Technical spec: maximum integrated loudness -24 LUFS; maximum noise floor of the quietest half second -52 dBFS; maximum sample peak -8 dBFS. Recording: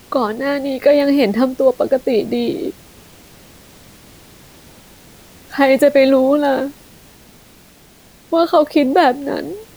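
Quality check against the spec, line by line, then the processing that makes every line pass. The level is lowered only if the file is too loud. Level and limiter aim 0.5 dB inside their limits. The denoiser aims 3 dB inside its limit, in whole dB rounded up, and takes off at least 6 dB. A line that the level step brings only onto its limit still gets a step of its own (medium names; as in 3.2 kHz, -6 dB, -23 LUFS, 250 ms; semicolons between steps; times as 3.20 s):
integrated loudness -15.5 LUFS: fail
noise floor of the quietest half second -46 dBFS: fail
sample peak -2.0 dBFS: fail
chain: trim -9 dB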